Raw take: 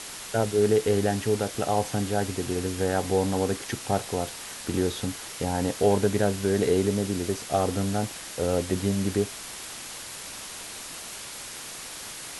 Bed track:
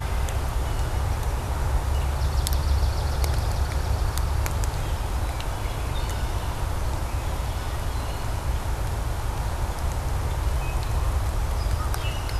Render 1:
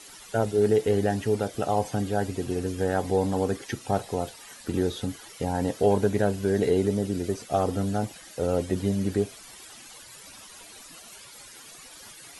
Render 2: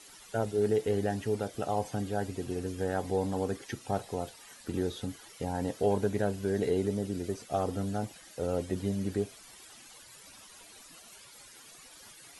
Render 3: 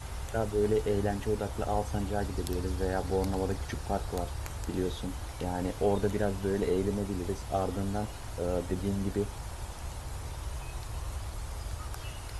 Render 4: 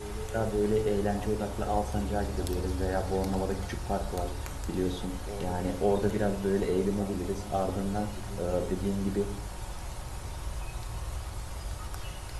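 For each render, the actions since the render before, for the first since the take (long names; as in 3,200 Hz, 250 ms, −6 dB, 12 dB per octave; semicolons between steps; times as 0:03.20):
broadband denoise 13 dB, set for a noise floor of −39 dBFS
level −6 dB
mix in bed track −13 dB
backwards echo 546 ms −14.5 dB; rectangular room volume 590 cubic metres, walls furnished, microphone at 1 metre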